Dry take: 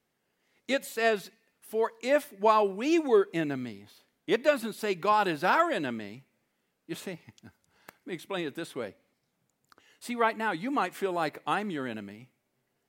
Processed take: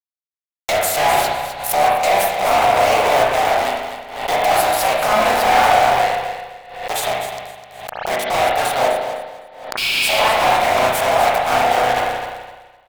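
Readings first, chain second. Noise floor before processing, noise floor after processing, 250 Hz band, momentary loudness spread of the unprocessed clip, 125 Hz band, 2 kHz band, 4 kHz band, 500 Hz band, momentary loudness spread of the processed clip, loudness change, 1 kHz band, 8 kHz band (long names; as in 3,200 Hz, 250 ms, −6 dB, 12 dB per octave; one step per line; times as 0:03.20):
−79 dBFS, below −85 dBFS, 0.0 dB, 17 LU, +10.0 dB, +14.0 dB, +18.5 dB, +11.0 dB, 16 LU, +12.5 dB, +16.0 dB, +21.5 dB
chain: sub-harmonics by changed cycles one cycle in 3, inverted
healed spectral selection 0:09.81–0:10.18, 2,200–5,400 Hz after
high-shelf EQ 5,900 Hz +9.5 dB
brickwall limiter −20 dBFS, peak gain reduction 17.5 dB
flanger 0.26 Hz, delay 4.3 ms, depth 8.8 ms, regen +90%
four-pole ladder high-pass 650 Hz, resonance 70%
fuzz pedal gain 55 dB, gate −58 dBFS
repeating echo 255 ms, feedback 25%, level −10 dB
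spring reverb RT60 1 s, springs 32/40 ms, chirp 40 ms, DRR −2.5 dB
background raised ahead of every attack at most 72 dB per second
level −3.5 dB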